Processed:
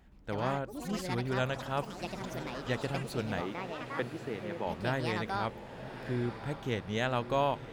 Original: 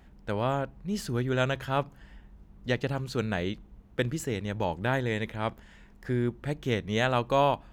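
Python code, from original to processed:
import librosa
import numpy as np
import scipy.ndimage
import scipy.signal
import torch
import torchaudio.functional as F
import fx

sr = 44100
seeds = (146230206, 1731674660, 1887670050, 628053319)

y = fx.echo_pitch(x, sr, ms=121, semitones=6, count=3, db_per_echo=-6.0)
y = fx.bandpass_edges(y, sr, low_hz=240.0, high_hz=2600.0, at=(3.41, 4.67))
y = fx.echo_diffused(y, sr, ms=1087, feedback_pct=55, wet_db=-11.0)
y = y * 10.0 ** (-5.5 / 20.0)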